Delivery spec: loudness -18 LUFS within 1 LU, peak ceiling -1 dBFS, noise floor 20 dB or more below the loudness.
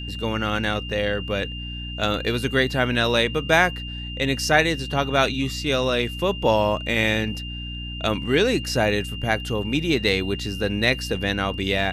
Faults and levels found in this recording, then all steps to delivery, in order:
hum 60 Hz; highest harmonic 300 Hz; hum level -31 dBFS; steady tone 2.8 kHz; tone level -34 dBFS; loudness -22.5 LUFS; peak level -4.0 dBFS; loudness target -18.0 LUFS
-> de-hum 60 Hz, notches 5; band-stop 2.8 kHz, Q 30; trim +4.5 dB; peak limiter -1 dBFS

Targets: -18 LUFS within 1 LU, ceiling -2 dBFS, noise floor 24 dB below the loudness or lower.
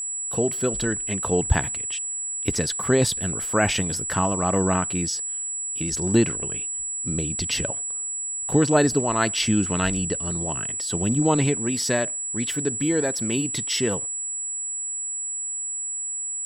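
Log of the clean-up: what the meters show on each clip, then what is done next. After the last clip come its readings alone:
steady tone 7.8 kHz; tone level -27 dBFS; loudness -23.5 LUFS; peak level -5.0 dBFS; loudness target -18.0 LUFS
-> band-stop 7.8 kHz, Q 30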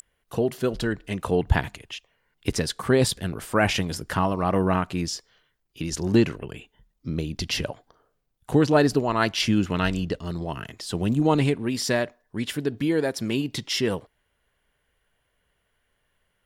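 steady tone not found; loudness -25.0 LUFS; peak level -6.0 dBFS; loudness target -18.0 LUFS
-> trim +7 dB; peak limiter -2 dBFS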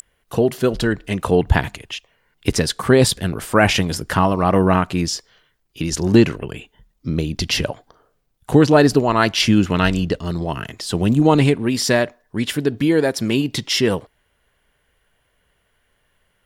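loudness -18.5 LUFS; peak level -2.0 dBFS; noise floor -66 dBFS

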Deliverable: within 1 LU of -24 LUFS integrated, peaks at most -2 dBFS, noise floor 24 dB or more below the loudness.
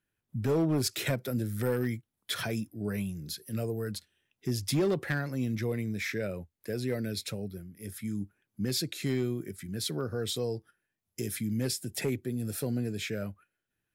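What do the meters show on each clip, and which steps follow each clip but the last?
clipped samples 0.7%; clipping level -22.0 dBFS; loudness -33.0 LUFS; peak level -22.0 dBFS; loudness target -24.0 LUFS
-> clip repair -22 dBFS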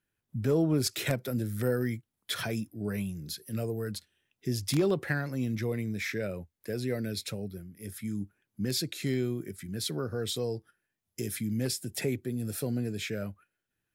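clipped samples 0.0%; loudness -33.0 LUFS; peak level -13.0 dBFS; loudness target -24.0 LUFS
-> trim +9 dB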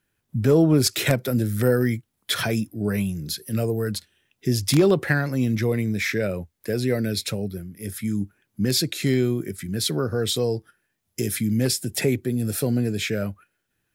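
loudness -24.0 LUFS; peak level -4.0 dBFS; noise floor -76 dBFS

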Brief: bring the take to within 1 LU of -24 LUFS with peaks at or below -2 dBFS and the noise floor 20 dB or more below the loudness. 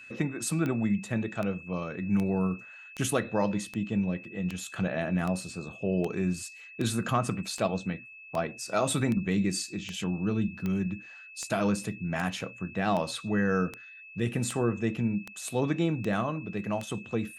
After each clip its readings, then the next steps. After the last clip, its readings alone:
clicks found 22; steady tone 2.6 kHz; tone level -46 dBFS; loudness -30.5 LUFS; peak level -13.0 dBFS; loudness target -24.0 LUFS
-> de-click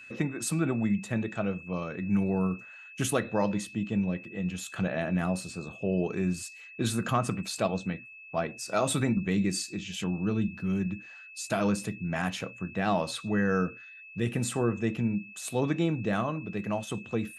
clicks found 0; steady tone 2.6 kHz; tone level -46 dBFS
-> band-stop 2.6 kHz, Q 30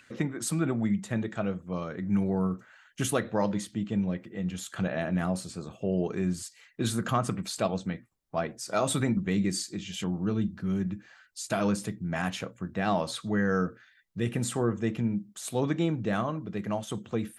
steady tone not found; loudness -30.5 LUFS; peak level -13.0 dBFS; loudness target -24.0 LUFS
-> trim +6.5 dB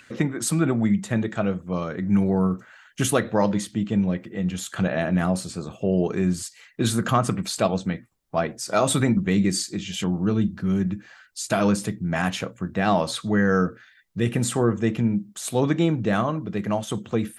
loudness -24.0 LUFS; peak level -6.5 dBFS; noise floor -54 dBFS

